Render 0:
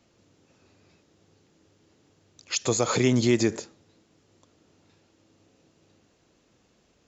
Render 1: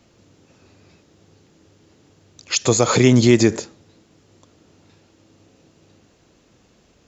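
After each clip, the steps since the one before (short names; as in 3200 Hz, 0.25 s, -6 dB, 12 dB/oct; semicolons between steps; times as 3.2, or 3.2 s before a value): low shelf 170 Hz +3.5 dB; gain +7.5 dB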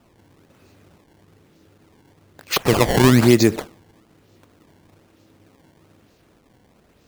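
decimation with a swept rate 20×, swing 160% 1.1 Hz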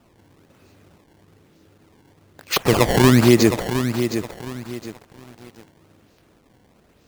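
lo-fi delay 0.714 s, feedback 35%, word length 6-bit, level -8.5 dB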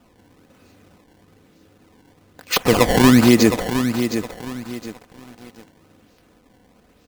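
comb 4 ms, depth 37%; gain +1 dB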